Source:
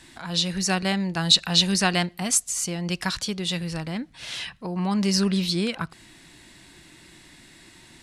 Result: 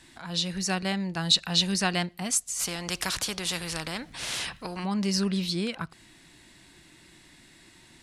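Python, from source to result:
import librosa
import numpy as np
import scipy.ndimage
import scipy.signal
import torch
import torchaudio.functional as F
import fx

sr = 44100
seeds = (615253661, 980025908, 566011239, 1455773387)

y = fx.spectral_comp(x, sr, ratio=2.0, at=(2.59, 4.83), fade=0.02)
y = F.gain(torch.from_numpy(y), -4.5).numpy()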